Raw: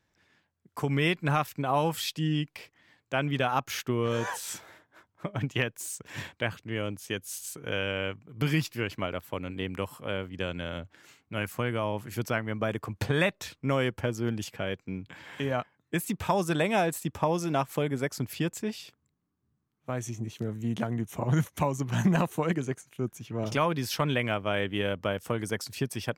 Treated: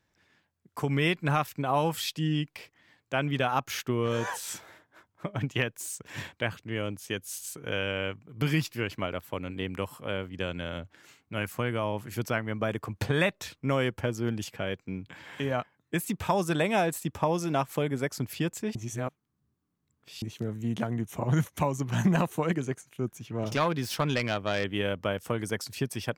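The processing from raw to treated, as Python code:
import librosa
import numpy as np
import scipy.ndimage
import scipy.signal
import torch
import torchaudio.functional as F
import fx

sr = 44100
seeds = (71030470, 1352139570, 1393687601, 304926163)

y = fx.self_delay(x, sr, depth_ms=0.11, at=(23.12, 24.64))
y = fx.edit(y, sr, fx.reverse_span(start_s=18.75, length_s=1.47), tone=tone)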